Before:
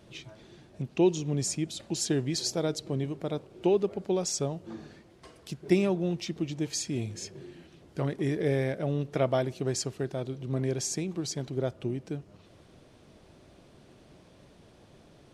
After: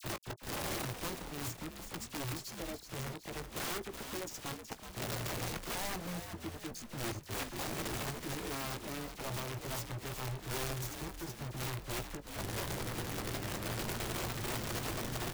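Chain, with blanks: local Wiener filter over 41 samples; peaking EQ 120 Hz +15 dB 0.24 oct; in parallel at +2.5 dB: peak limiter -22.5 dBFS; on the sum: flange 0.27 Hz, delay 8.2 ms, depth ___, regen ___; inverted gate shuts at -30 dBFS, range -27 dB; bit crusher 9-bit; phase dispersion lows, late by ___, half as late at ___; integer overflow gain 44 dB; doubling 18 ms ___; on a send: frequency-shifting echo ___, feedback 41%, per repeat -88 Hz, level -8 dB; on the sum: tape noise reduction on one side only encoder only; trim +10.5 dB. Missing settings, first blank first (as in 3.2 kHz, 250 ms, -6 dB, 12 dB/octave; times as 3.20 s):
2.3 ms, -12%, 42 ms, 2.1 kHz, -12 dB, 373 ms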